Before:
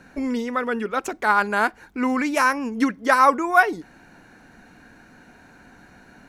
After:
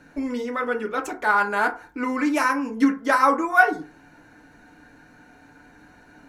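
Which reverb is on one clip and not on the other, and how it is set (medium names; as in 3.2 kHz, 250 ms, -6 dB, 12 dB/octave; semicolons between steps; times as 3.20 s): FDN reverb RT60 0.35 s, low-frequency decay 0.8×, high-frequency decay 0.45×, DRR 2 dB; trim -4 dB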